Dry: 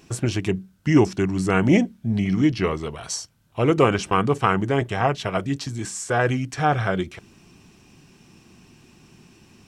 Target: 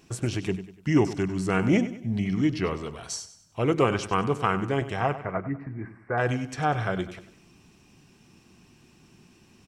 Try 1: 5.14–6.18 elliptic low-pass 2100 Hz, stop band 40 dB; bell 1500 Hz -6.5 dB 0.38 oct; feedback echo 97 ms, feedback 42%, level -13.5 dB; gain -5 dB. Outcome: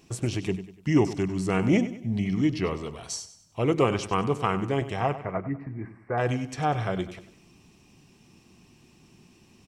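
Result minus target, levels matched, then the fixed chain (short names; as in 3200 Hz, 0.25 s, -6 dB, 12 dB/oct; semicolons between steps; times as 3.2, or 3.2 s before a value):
2000 Hz band -3.0 dB
5.14–6.18 elliptic low-pass 2100 Hz, stop band 40 dB; feedback echo 97 ms, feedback 42%, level -13.5 dB; gain -5 dB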